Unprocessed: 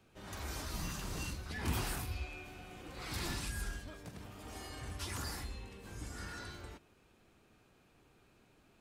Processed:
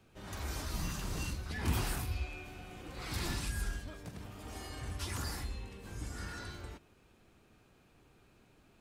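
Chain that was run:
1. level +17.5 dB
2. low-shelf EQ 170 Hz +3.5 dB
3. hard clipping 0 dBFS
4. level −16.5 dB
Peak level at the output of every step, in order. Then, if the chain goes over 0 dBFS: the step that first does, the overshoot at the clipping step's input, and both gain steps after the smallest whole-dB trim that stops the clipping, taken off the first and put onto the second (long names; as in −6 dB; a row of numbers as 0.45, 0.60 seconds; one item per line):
−6.5, −4.5, −4.5, −21.0 dBFS
no step passes full scale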